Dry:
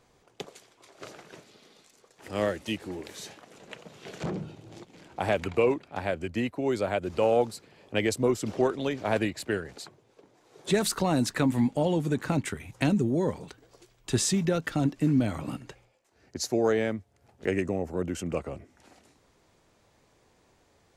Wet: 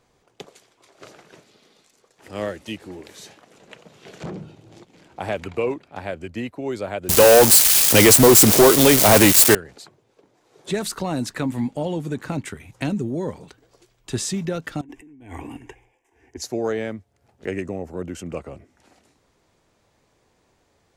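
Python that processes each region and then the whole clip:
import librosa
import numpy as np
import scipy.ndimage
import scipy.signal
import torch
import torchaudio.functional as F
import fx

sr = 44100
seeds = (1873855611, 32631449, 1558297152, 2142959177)

y = fx.chain(x, sr, fx.crossing_spikes(level_db=-21.5),
    fx.high_shelf(hz=3500.0, db=10.5),
    fx.leveller(passes=5), at=(7.09, 9.55))
y = fx.chain(y, sr, fx.high_shelf(hz=10000.0, db=-8.5),
    fx.over_compress(threshold_db=-36.0, ratio=-1.0),
    fx.fixed_phaser(hz=870.0, stages=8), at=(14.81, 16.42))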